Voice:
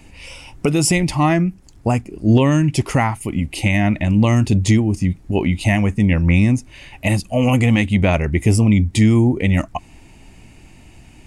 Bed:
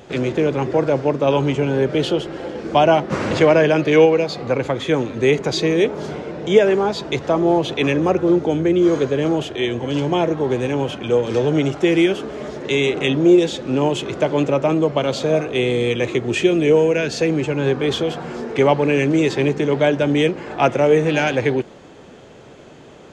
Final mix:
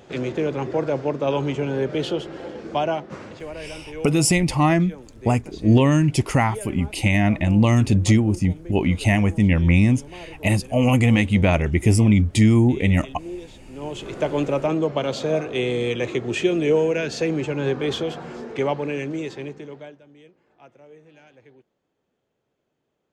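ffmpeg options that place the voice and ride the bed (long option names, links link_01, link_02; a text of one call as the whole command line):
ffmpeg -i stem1.wav -i stem2.wav -filter_complex "[0:a]adelay=3400,volume=-2dB[link_01];[1:a]volume=12dB,afade=type=out:start_time=2.47:duration=0.92:silence=0.149624,afade=type=in:start_time=13.73:duration=0.52:silence=0.133352,afade=type=out:start_time=17.92:duration=2.09:silence=0.0354813[link_02];[link_01][link_02]amix=inputs=2:normalize=0" out.wav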